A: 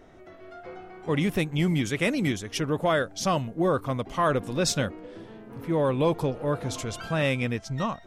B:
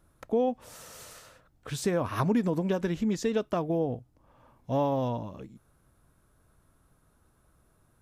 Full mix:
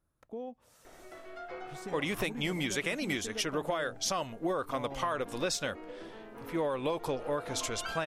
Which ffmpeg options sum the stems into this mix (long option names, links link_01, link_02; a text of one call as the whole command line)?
ffmpeg -i stem1.wav -i stem2.wav -filter_complex "[0:a]equalizer=frequency=130:width_type=o:width=2.4:gain=-14,alimiter=limit=-19.5dB:level=0:latency=1:release=236,adelay=850,volume=2dB[link_01];[1:a]volume=-15dB[link_02];[link_01][link_02]amix=inputs=2:normalize=0,acompressor=threshold=-28dB:ratio=6" out.wav